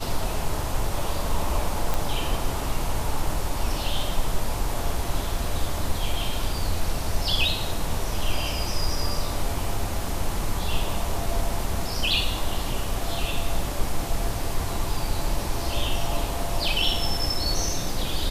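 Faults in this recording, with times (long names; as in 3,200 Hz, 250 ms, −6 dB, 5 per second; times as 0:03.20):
0:01.94: click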